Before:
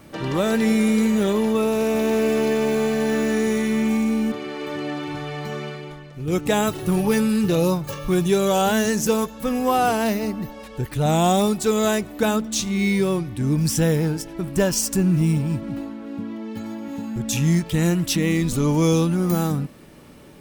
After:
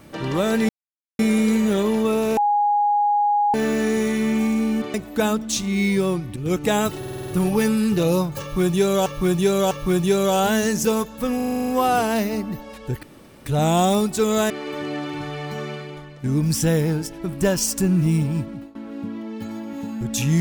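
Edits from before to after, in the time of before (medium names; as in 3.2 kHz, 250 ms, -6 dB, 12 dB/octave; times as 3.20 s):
0.69 s: insert silence 0.50 s
1.87–3.04 s: bleep 825 Hz -15.5 dBFS
4.44–6.18 s: swap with 11.97–13.39 s
6.80 s: stutter 0.05 s, 7 plays
7.93–8.58 s: loop, 3 plays
9.58 s: stutter 0.04 s, 9 plays
10.93 s: insert room tone 0.43 s
15.54–15.90 s: fade out, to -20 dB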